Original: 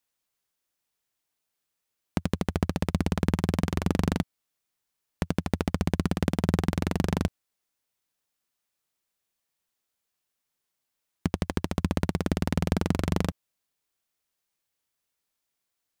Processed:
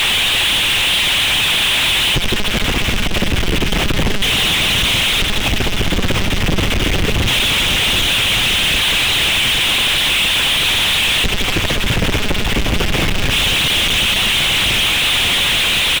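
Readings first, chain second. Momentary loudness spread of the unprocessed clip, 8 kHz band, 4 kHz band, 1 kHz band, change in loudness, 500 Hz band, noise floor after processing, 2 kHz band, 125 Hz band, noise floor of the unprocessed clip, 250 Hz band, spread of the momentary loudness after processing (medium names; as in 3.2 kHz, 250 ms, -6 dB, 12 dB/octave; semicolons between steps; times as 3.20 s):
6 LU, +25.5 dB, +34.0 dB, +15.0 dB, +15.5 dB, +11.0 dB, -18 dBFS, +27.0 dB, +8.5 dB, -83 dBFS, +6.5 dB, 5 LU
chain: zero-crossing glitches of -16 dBFS; high-pass 130 Hz 6 dB/octave; peaking EQ 2.8 kHz +13.5 dB 1.5 oct; comb 4.8 ms, depth 37%; waveshaping leveller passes 2; hard clipper -9.5 dBFS, distortion -16 dB; feedback echo behind a low-pass 750 ms, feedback 68%, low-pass 430 Hz, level -13 dB; LPC vocoder at 8 kHz pitch kept; power-law waveshaper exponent 0.35; trim -1.5 dB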